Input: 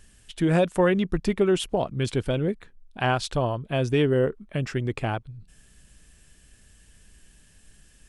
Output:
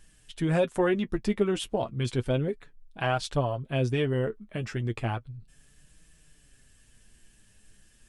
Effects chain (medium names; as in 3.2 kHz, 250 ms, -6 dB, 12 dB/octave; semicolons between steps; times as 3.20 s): flange 0.33 Hz, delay 6.1 ms, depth 3.6 ms, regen +34%